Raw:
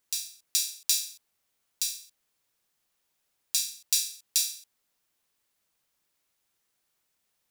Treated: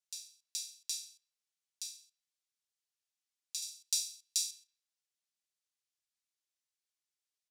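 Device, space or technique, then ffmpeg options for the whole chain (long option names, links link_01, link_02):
piezo pickup straight into a mixer: -filter_complex "[0:a]lowpass=6100,aderivative,asettb=1/sr,asplit=3[link_01][link_02][link_03];[link_01]atrim=end=3.624[link_04];[link_02]atrim=start=3.62:end=4.51,asetpts=PTS-STARTPTS,afade=type=in:duration=0.004:curve=qsin,afade=type=out:start_time=0.886:duration=0.004:curve=qsin,tiltshelf=frequency=1400:gain=-6.5[link_05];[link_03]atrim=start=4.506[link_06];[link_04][link_05]acrossfade=duration=0.004:curve1=hsin:curve2=qsin[link_07];[link_07][link_06]acrossfade=duration=0.004:curve1=qsin:curve2=hsin,asplit=2[link_08][link_09];[link_09]adelay=163,lowpass=frequency=1200:poles=1,volume=-20.5dB,asplit=2[link_10][link_11];[link_11]adelay=163,lowpass=frequency=1200:poles=1,volume=0.37,asplit=2[link_12][link_13];[link_13]adelay=163,lowpass=frequency=1200:poles=1,volume=0.37[link_14];[link_08][link_10][link_12][link_14]amix=inputs=4:normalize=0,volume=-7dB"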